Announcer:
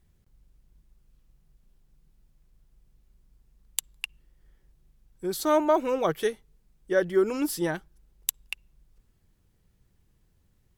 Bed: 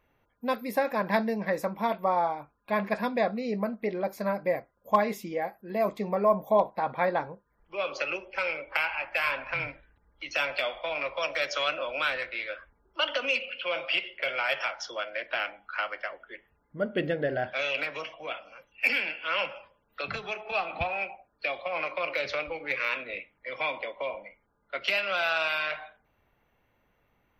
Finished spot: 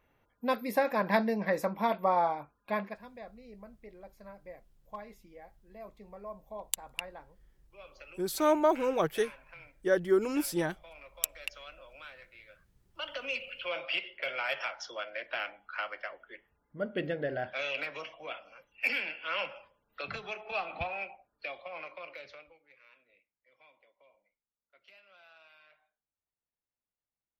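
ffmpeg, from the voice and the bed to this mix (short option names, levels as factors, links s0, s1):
-filter_complex "[0:a]adelay=2950,volume=0.708[s0];[1:a]volume=5.31,afade=t=out:st=2.61:d=0.37:silence=0.105925,afade=t=in:st=12.69:d=0.94:silence=0.16788,afade=t=out:st=20.76:d=1.87:silence=0.0473151[s1];[s0][s1]amix=inputs=2:normalize=0"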